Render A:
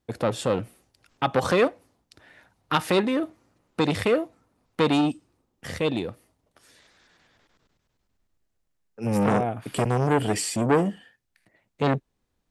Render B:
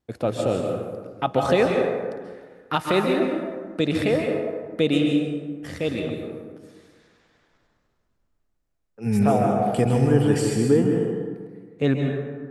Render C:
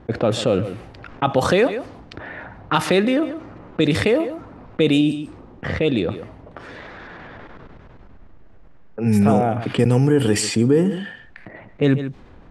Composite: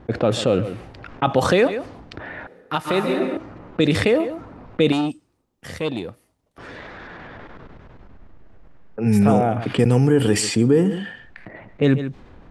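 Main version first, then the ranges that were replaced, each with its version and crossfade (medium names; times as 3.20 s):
C
2.47–3.37 s: from B
4.92–6.58 s: from A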